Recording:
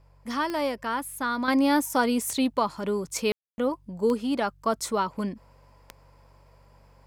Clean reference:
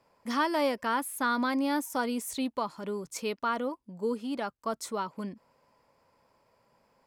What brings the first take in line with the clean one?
de-click; de-hum 47.6 Hz, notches 3; room tone fill 3.32–3.58; gain 0 dB, from 1.48 s -7 dB

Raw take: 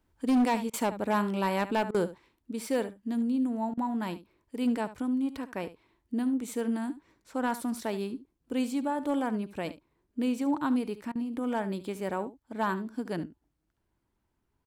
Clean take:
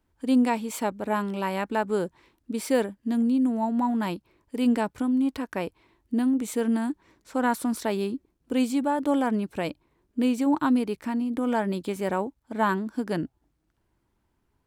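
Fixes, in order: clip repair -20.5 dBFS; interpolate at 0.7/1.91/3.74/11.12, 33 ms; inverse comb 72 ms -15 dB; gain 0 dB, from 2.18 s +5.5 dB

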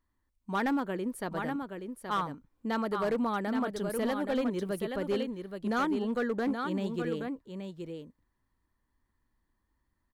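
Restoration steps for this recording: clip repair -24 dBFS; inverse comb 0.824 s -6.5 dB

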